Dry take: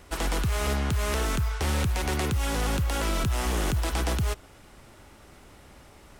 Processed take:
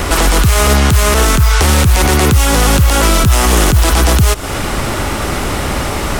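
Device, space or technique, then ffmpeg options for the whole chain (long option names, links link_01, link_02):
mastering chain: -filter_complex "[0:a]equalizer=frequency=1200:width_type=o:width=0.29:gain=2.5,acrossover=split=2100|4900[link_01][link_02][link_03];[link_01]acompressor=threshold=-37dB:ratio=4[link_04];[link_02]acompressor=threshold=-51dB:ratio=4[link_05];[link_03]acompressor=threshold=-45dB:ratio=4[link_06];[link_04][link_05][link_06]amix=inputs=3:normalize=0,acompressor=threshold=-40dB:ratio=2,asoftclip=type=hard:threshold=-29dB,alimiter=level_in=35dB:limit=-1dB:release=50:level=0:latency=1,volume=-1dB"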